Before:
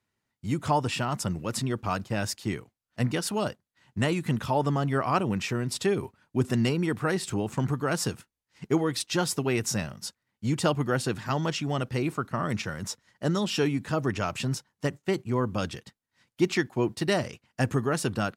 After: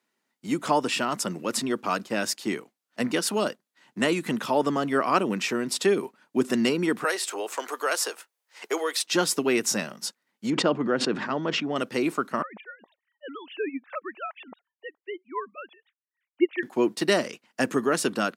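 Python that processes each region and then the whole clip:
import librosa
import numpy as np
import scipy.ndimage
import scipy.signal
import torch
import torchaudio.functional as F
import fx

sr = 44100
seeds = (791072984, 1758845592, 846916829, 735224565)

y = fx.chain(x, sr, fx.highpass(hz=470.0, slope=24),
    fx.high_shelf(hz=12000.0, db=5.5),
    fx.band_squash(depth_pct=40), at=(7.04, 9.06))
y = fx.chain(y, sr, fx.spacing_loss(db_at_10k=29),
    fx.sustainer(db_per_s=46.0), at=(10.5, 11.76))
y = fx.chain(y, sr, fx.sine_speech(),
    fx.highpass(hz=730.0, slope=6),
    fx.upward_expand(threshold_db=-49.0, expansion=1.5), at=(12.42, 16.63))
y = scipy.signal.sosfilt(scipy.signal.butter(4, 220.0, 'highpass', fs=sr, output='sos'), y)
y = fx.dynamic_eq(y, sr, hz=810.0, q=3.4, threshold_db=-44.0, ratio=4.0, max_db=-5)
y = F.gain(torch.from_numpy(y), 4.5).numpy()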